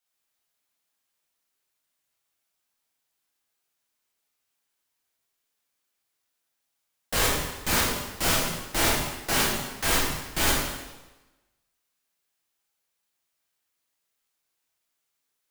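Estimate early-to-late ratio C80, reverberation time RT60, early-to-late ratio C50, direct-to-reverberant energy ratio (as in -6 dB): 3.5 dB, 1.1 s, 0.5 dB, -6.0 dB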